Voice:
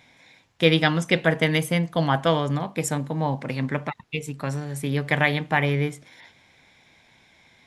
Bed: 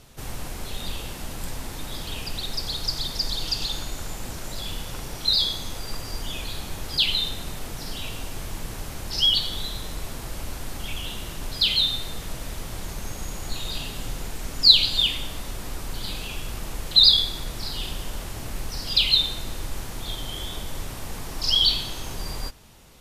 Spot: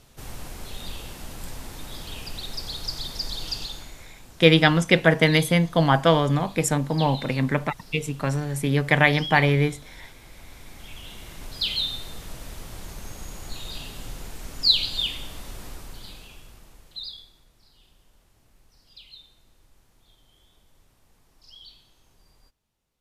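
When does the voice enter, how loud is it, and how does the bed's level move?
3.80 s, +3.0 dB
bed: 3.56 s -4 dB
4.13 s -14.5 dB
10.24 s -14.5 dB
11.66 s -5 dB
15.64 s -5 dB
17.51 s -28 dB

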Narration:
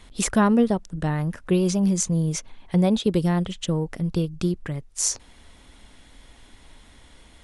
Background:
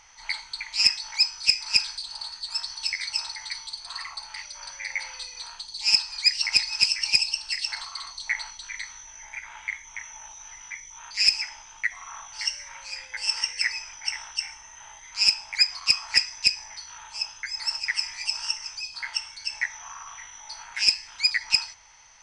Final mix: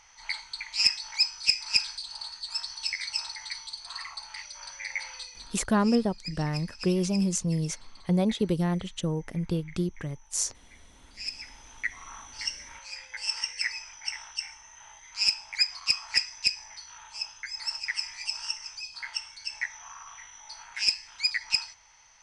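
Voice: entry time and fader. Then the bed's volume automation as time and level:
5.35 s, -5.0 dB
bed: 5.19 s -3 dB
5.90 s -19.5 dB
11.13 s -19.5 dB
11.71 s -4.5 dB

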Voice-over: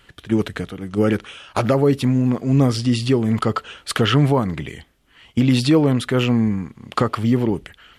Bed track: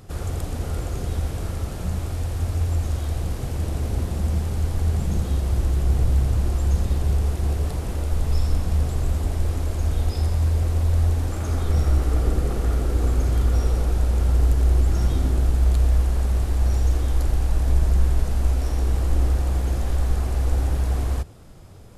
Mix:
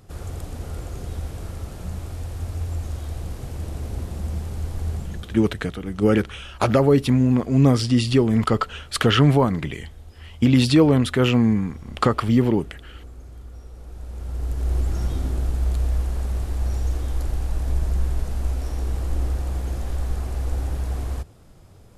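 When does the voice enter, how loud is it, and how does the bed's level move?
5.05 s, 0.0 dB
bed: 4.94 s -5 dB
5.66 s -20.5 dB
13.70 s -20.5 dB
14.76 s -4 dB

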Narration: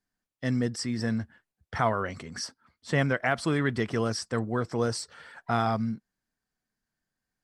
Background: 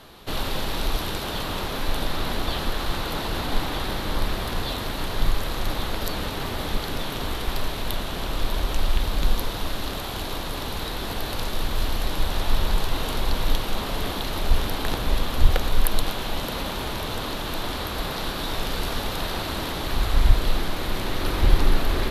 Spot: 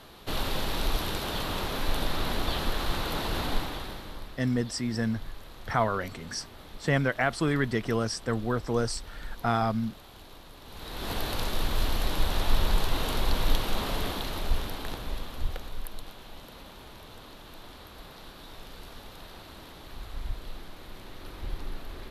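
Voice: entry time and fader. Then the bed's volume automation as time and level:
3.95 s, 0.0 dB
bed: 3.47 s -3 dB
4.33 s -19 dB
10.61 s -19 dB
11.11 s -2.5 dB
13.90 s -2.5 dB
15.96 s -18 dB

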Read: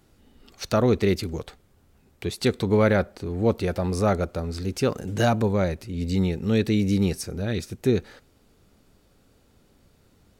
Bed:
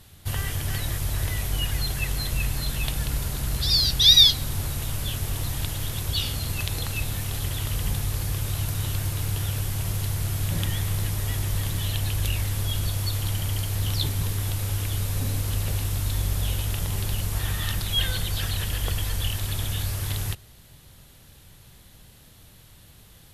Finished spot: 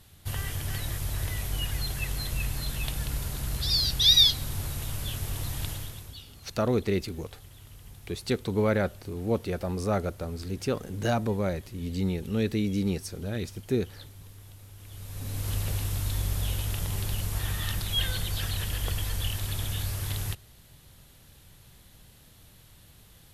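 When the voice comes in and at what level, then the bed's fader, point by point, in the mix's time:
5.85 s, -5.5 dB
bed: 5.72 s -4.5 dB
6.26 s -21.5 dB
14.75 s -21.5 dB
15.49 s -3.5 dB

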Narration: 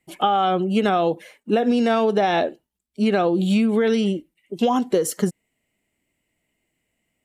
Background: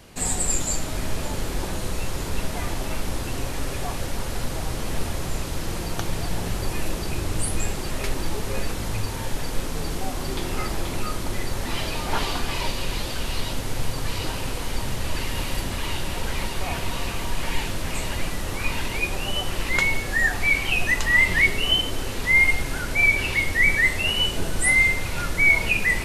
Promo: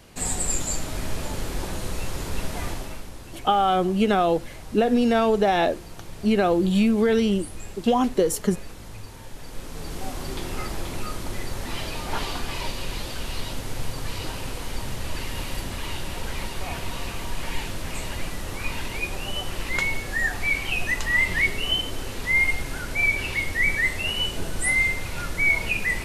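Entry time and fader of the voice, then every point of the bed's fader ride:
3.25 s, -1.0 dB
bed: 2.69 s -2 dB
3.11 s -12.5 dB
9.33 s -12.5 dB
10.07 s -3.5 dB

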